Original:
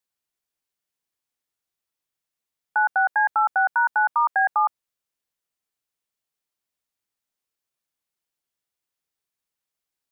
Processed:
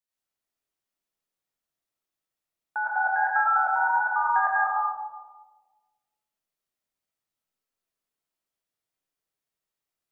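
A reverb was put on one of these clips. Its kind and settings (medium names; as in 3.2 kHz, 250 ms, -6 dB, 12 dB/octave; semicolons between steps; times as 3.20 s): algorithmic reverb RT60 1.4 s, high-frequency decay 0.25×, pre-delay 60 ms, DRR -7 dB; trim -8.5 dB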